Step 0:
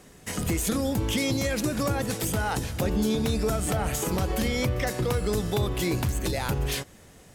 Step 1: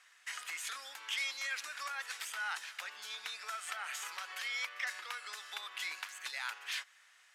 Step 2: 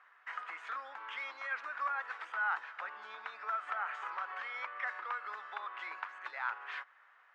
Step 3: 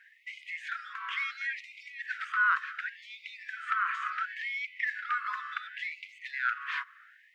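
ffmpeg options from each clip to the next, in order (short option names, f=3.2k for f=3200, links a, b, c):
-af "highpass=f=1.4k:w=0.5412,highpass=f=1.4k:w=1.3066,aemphasis=mode=reproduction:type=riaa"
-af "lowpass=f=1.2k:t=q:w=1.6,volume=4dB"
-af "afftfilt=real='re*gte(b*sr/1024,980*pow(2000/980,0.5+0.5*sin(2*PI*0.7*pts/sr)))':imag='im*gte(b*sr/1024,980*pow(2000/980,0.5+0.5*sin(2*PI*0.7*pts/sr)))':win_size=1024:overlap=0.75,volume=8.5dB"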